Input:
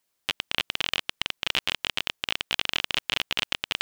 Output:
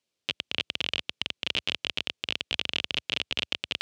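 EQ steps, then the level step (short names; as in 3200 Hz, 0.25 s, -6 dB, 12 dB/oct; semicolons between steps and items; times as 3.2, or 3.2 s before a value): HPF 71 Hz 24 dB/oct; air absorption 83 m; band shelf 1200 Hz -8 dB; 0.0 dB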